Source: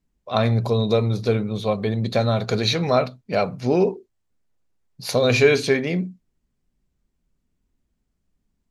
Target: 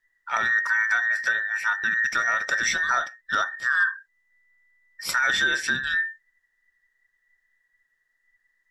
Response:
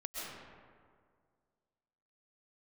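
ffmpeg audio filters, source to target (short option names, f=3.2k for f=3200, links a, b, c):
-af "afftfilt=real='real(if(between(b,1,1012),(2*floor((b-1)/92)+1)*92-b,b),0)':imag='imag(if(between(b,1,1012),(2*floor((b-1)/92)+1)*92-b,b),0)*if(between(b,1,1012),-1,1)':win_size=2048:overlap=0.75,adynamicequalizer=threshold=0.00794:dfrequency=850:dqfactor=4.2:tfrequency=850:tqfactor=4.2:attack=5:release=100:ratio=0.375:range=1.5:mode=cutabove:tftype=bell,alimiter=limit=-13dB:level=0:latency=1:release=350"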